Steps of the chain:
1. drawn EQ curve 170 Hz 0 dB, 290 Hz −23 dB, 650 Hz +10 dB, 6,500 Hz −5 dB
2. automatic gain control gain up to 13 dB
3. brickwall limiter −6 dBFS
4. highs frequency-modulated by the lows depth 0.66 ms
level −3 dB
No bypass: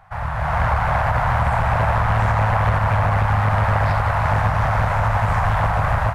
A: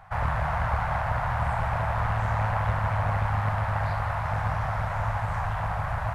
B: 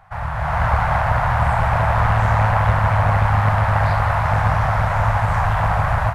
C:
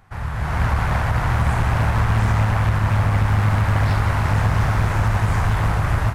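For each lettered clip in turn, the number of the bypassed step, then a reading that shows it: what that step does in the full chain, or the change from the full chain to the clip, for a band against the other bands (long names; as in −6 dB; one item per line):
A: 2, change in momentary loudness spread +1 LU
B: 3, change in crest factor +3.5 dB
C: 1, 1 kHz band −7.5 dB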